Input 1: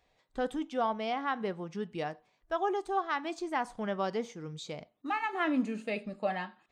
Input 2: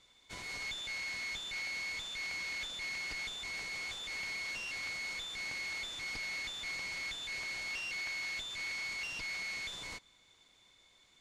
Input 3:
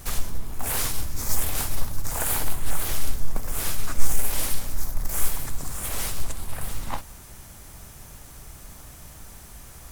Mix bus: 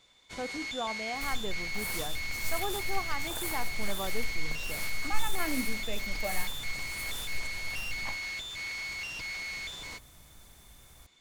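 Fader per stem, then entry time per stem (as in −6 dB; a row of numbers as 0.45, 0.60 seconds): −5.0, +2.0, −11.5 decibels; 0.00, 0.00, 1.15 seconds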